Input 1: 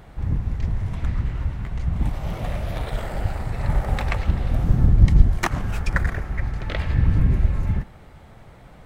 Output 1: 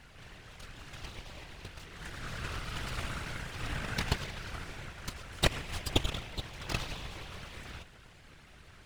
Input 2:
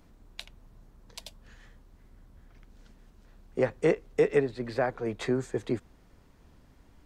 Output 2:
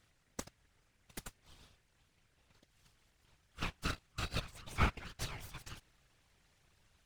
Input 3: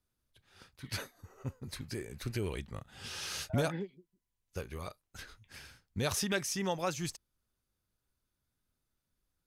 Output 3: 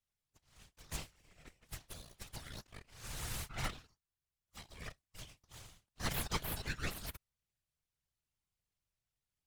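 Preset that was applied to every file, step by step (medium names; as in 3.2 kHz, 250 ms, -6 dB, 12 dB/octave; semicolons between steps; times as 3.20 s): FFT band-pass 580–10000 Hz; full-wave rectifier; whisper effect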